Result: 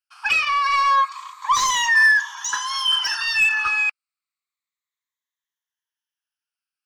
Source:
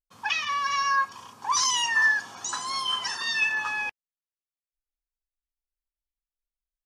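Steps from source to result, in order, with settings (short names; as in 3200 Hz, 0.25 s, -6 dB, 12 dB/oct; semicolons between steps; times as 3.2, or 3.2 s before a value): moving spectral ripple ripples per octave 1.1, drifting -0.3 Hz, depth 12 dB; steep high-pass 980 Hz 36 dB/oct; overdrive pedal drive 15 dB, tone 3100 Hz, clips at -8.5 dBFS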